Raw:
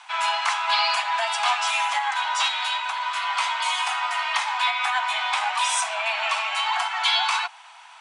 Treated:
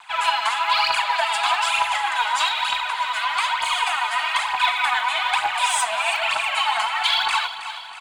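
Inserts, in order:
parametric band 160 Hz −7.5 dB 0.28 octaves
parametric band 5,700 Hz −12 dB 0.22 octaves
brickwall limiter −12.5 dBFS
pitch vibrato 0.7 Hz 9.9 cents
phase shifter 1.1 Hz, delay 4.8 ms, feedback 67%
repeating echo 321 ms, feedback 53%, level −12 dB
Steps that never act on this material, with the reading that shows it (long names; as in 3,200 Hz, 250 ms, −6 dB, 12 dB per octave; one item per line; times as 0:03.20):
parametric band 160 Hz: nothing at its input below 600 Hz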